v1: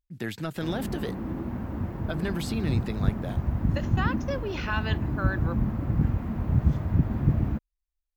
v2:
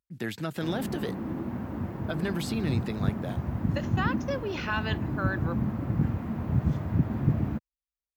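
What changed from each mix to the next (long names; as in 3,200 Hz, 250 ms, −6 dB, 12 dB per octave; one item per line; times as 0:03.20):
master: add high-pass filter 100 Hz 12 dB per octave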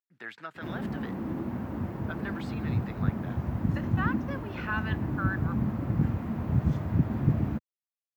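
speech: add resonant band-pass 1,400 Hz, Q 1.5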